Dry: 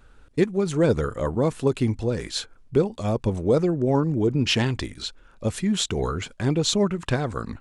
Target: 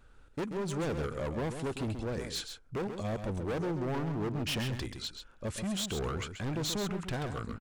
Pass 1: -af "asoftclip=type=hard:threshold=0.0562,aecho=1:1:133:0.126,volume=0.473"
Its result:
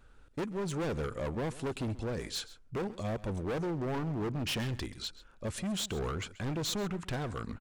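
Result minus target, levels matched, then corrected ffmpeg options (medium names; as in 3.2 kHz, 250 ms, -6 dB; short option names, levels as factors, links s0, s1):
echo-to-direct -10 dB
-af "asoftclip=type=hard:threshold=0.0562,aecho=1:1:133:0.398,volume=0.473"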